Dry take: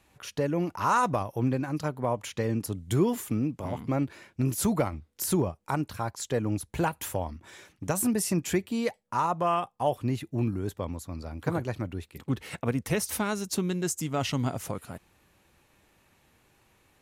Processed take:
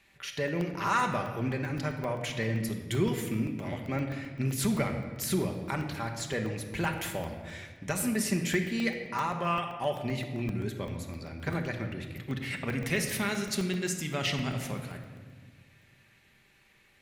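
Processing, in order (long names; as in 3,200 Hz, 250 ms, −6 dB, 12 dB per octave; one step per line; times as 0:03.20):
graphic EQ with 10 bands 1,000 Hz −4 dB, 2,000 Hz +11 dB, 4,000 Hz +5 dB
rectangular room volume 1,700 cubic metres, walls mixed, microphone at 1.2 metres
in parallel at −7 dB: soft clipping −16.5 dBFS, distortion −18 dB
on the sum: regular buffer underruns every 0.13 s, samples 64, zero, from 0:00.48
level −8 dB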